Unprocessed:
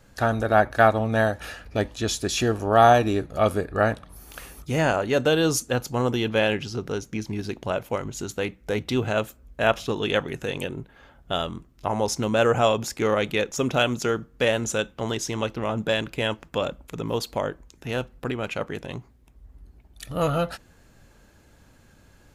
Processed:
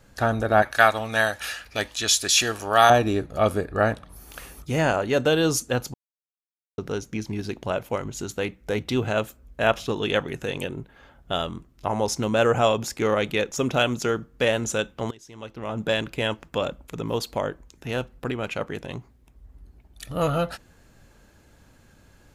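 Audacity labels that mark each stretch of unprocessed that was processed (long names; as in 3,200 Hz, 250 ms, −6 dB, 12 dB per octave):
0.620000	2.900000	tilt shelving filter lows −9.5 dB, about 910 Hz
5.940000	6.780000	silence
15.110000	15.870000	fade in quadratic, from −20.5 dB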